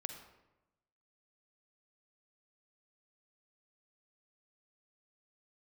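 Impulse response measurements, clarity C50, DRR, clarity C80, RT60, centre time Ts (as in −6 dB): 6.5 dB, 6.0 dB, 9.0 dB, 1.0 s, 23 ms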